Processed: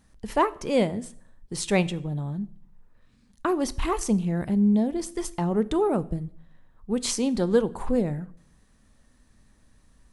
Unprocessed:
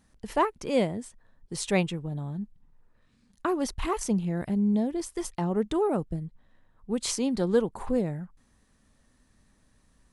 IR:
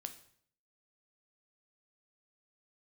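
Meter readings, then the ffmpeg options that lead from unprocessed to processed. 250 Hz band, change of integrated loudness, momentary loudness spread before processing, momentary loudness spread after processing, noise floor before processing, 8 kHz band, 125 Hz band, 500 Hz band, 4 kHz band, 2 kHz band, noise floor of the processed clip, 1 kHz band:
+3.0 dB, +3.0 dB, 12 LU, 12 LU, −66 dBFS, +2.5 dB, +3.0 dB, +2.5 dB, +2.5 dB, +2.5 dB, −61 dBFS, +2.5 dB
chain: -filter_complex "[0:a]asplit=2[link_01][link_02];[1:a]atrim=start_sample=2205,lowshelf=frequency=93:gain=9.5[link_03];[link_02][link_03]afir=irnorm=-1:irlink=0,volume=0dB[link_04];[link_01][link_04]amix=inputs=2:normalize=0,volume=-2dB"

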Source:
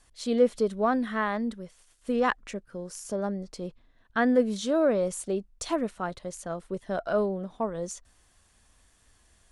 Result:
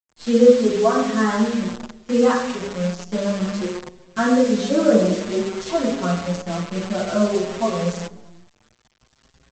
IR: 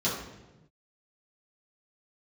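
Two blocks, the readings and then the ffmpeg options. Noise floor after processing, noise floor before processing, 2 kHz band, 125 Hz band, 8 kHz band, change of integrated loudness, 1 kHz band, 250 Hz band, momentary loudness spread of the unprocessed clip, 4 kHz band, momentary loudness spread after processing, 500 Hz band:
−64 dBFS, −64 dBFS, +5.5 dB, +13.0 dB, +6.5 dB, +8.5 dB, +6.0 dB, +10.0 dB, 15 LU, +11.0 dB, 11 LU, +8.5 dB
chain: -filter_complex "[0:a]lowpass=frequency=5600:width=0.5412,lowpass=frequency=5600:width=1.3066[link_01];[1:a]atrim=start_sample=2205[link_02];[link_01][link_02]afir=irnorm=-1:irlink=0,aresample=16000,acrusher=bits=5:dc=4:mix=0:aa=0.000001,aresample=44100,asplit=2[link_03][link_04];[link_04]adelay=6.3,afreqshift=0.58[link_05];[link_03][link_05]amix=inputs=2:normalize=1,volume=-1.5dB"

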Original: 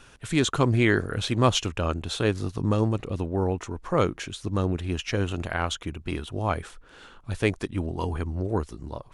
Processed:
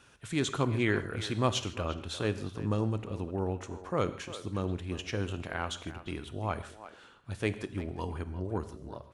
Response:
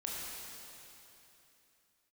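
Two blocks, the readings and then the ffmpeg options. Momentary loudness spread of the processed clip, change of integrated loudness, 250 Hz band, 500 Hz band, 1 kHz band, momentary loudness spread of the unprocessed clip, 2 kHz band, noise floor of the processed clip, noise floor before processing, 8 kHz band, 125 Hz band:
10 LU, −7.0 dB, −7.0 dB, −7.0 dB, −7.0 dB, 10 LU, −7.0 dB, −56 dBFS, −52 dBFS, −7.0 dB, −7.5 dB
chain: -filter_complex "[0:a]highpass=60,asplit=2[link_01][link_02];[link_02]adelay=350,highpass=300,lowpass=3400,asoftclip=type=hard:threshold=-14.5dB,volume=-13dB[link_03];[link_01][link_03]amix=inputs=2:normalize=0,asplit=2[link_04][link_05];[1:a]atrim=start_sample=2205,afade=type=out:start_time=0.37:duration=0.01,atrim=end_sample=16758,asetrate=83790,aresample=44100[link_06];[link_05][link_06]afir=irnorm=-1:irlink=0,volume=-4dB[link_07];[link_04][link_07]amix=inputs=2:normalize=0,volume=-9dB"

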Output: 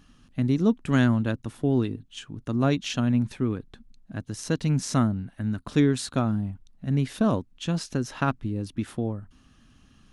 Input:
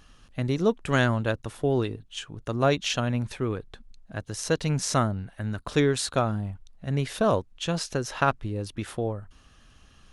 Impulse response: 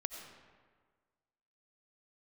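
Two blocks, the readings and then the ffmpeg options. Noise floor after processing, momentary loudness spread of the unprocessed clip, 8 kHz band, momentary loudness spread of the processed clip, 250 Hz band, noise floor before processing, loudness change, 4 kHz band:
−58 dBFS, 12 LU, −4.0 dB, 13 LU, +5.0 dB, −56 dBFS, +1.0 dB, −4.0 dB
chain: -af "equalizer=frequency=125:width_type=o:width=1:gain=4,equalizer=frequency=250:width_type=o:width=1:gain=11,equalizer=frequency=500:width_type=o:width=1:gain=-4,volume=-4dB"

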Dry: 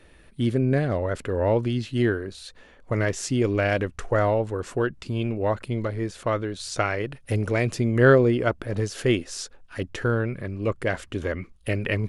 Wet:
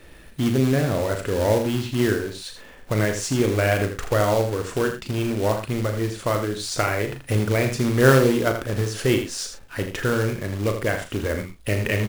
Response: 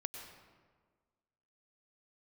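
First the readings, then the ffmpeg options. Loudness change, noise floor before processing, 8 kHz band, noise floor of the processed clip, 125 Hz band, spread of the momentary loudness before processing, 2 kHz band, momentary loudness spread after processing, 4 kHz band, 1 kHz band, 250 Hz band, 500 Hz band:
+2.0 dB, −53 dBFS, +6.5 dB, −45 dBFS, +2.0 dB, 8 LU, +2.0 dB, 7 LU, +5.5 dB, +2.5 dB, +2.5 dB, +1.5 dB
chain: -filter_complex "[0:a]asplit=2[link_01][link_02];[link_02]acompressor=threshold=-34dB:ratio=5,volume=0dB[link_03];[link_01][link_03]amix=inputs=2:normalize=0,acrusher=bits=3:mode=log:mix=0:aa=0.000001,asplit=2[link_04][link_05];[link_05]adelay=38,volume=-8dB[link_06];[link_04][link_06]amix=inputs=2:normalize=0,aecho=1:1:81:0.376,volume=-1dB"

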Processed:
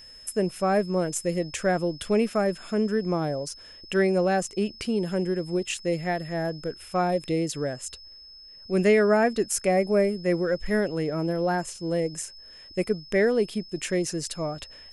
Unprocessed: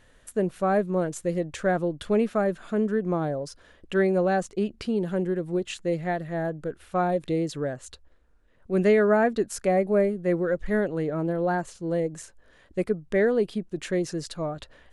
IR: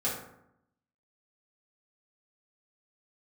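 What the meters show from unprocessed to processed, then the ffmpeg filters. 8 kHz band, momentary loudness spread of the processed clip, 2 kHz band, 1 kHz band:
+8.5 dB, 12 LU, +1.5 dB, 0.0 dB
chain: -af "aexciter=amount=1.3:drive=7.1:freq=2100,aeval=exprs='val(0)+0.00562*sin(2*PI*5200*n/s)':channel_layout=same"

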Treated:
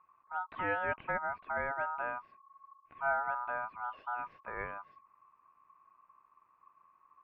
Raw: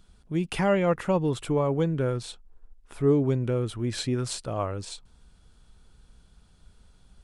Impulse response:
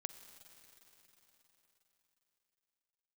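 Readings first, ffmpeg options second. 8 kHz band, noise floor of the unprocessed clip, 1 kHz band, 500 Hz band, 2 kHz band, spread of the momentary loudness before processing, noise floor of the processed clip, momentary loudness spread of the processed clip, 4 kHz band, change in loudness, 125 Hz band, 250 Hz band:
below −40 dB, −59 dBFS, 0.0 dB, −15.0 dB, +3.5 dB, 10 LU, −70 dBFS, 9 LU, below −20 dB, −10.0 dB, −28.0 dB, −25.5 dB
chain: -af "lowpass=frequency=1500:width=0.5412,lowpass=frequency=1500:width=1.3066,aeval=exprs='val(0)*sin(2*PI*1100*n/s)':channel_layout=same,volume=-8dB"

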